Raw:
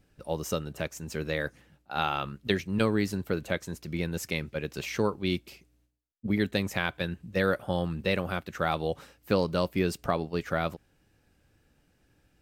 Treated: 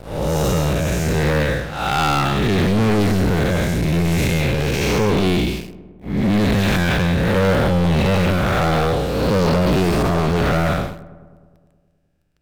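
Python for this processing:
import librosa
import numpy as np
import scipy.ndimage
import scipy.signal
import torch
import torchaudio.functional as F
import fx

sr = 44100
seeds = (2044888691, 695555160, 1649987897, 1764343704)

y = fx.spec_blur(x, sr, span_ms=289.0)
y = fx.low_shelf(y, sr, hz=95.0, db=10.0)
y = fx.leveller(y, sr, passes=5)
y = fx.echo_filtered(y, sr, ms=104, feedback_pct=71, hz=2100.0, wet_db=-17.5)
y = F.gain(torch.from_numpy(y), 3.5).numpy()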